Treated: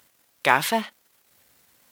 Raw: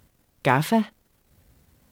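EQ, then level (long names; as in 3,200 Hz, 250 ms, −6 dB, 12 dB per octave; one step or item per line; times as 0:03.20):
high-pass filter 1,300 Hz 6 dB per octave
+6.5 dB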